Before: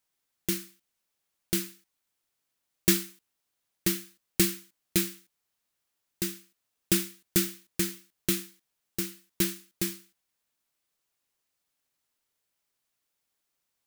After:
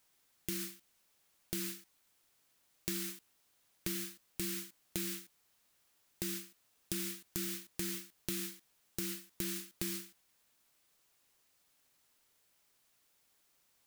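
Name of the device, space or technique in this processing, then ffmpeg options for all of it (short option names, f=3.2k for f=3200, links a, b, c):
de-esser from a sidechain: -filter_complex "[0:a]asplit=2[a][b];[b]highpass=6.3k,apad=whole_len=611576[c];[a][c]sidechaincompress=threshold=-44dB:ratio=16:attack=2.7:release=55,volume=8dB"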